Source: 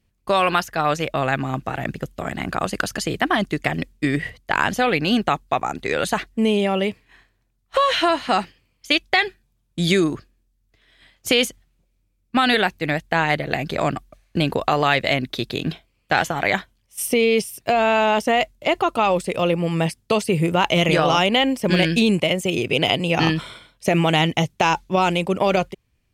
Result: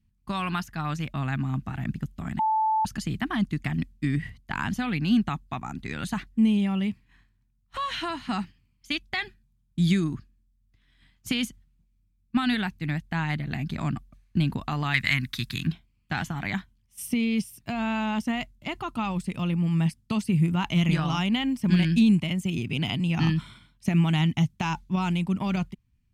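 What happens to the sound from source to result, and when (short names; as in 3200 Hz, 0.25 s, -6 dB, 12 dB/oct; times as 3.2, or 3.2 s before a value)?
2.39–2.85 bleep 875 Hz -8.5 dBFS
14.94–15.67 EQ curve 130 Hz 0 dB, 220 Hz -4 dB, 660 Hz -9 dB, 1000 Hz +5 dB, 1900 Hz +12 dB, 3100 Hz +5 dB, 9300 Hz +12 dB
whole clip: EQ curve 230 Hz 0 dB, 510 Hz -25 dB, 910 Hz -11 dB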